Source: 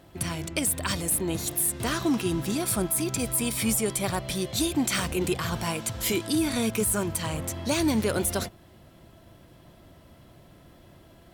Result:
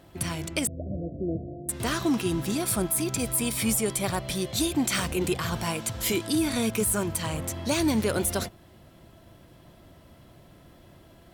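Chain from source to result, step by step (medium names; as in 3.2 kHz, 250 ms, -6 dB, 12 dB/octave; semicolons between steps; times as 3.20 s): 0.67–1.69 s: Chebyshev low-pass 710 Hz, order 10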